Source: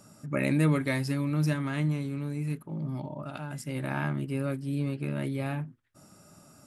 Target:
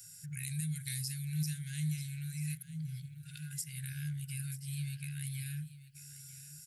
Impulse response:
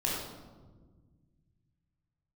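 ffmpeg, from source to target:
-filter_complex "[0:a]acrossover=split=480|3900[s0][s1][s2];[s1]acompressor=threshold=0.00447:ratio=10[s3];[s0][s3][s2]amix=inputs=3:normalize=0,crystalizer=i=4.5:c=0,afftfilt=real='re*(1-between(b*sr/4096,170,1400))':imag='im*(1-between(b*sr/4096,170,1400))':win_size=4096:overlap=0.75,alimiter=limit=0.1:level=0:latency=1:release=267,aecho=1:1:939:0.168,volume=0.501"

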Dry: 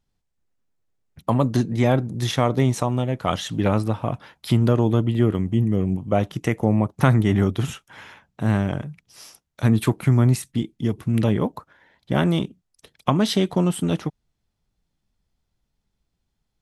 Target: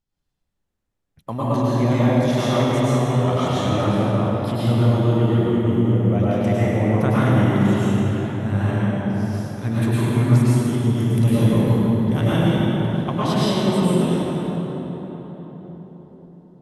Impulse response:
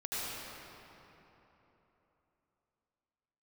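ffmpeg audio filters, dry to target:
-filter_complex "[0:a]asettb=1/sr,asplit=3[s0][s1][s2];[s0]atrim=end=10.784[s3];[s1]atrim=start=10.78:end=12.21,asetpts=PTS-STARTPTS,afade=t=in:d=0.004:c=qsin,afade=t=out:st=1.426:d=0.004:c=qsin,bass=f=250:g=6,treble=f=4000:g=11[s4];[s2]atrim=start=12.206[s5];[s3][s4]acrossfade=d=0.004:c1=hsin:c2=qsin[s6];[s6][s5]acrossfade=d=0.004:c1=qsin:c2=hsin[s7];[1:a]atrim=start_sample=2205,asetrate=31752,aresample=44100[s8];[s7][s8]afir=irnorm=-1:irlink=0,volume=0.562"

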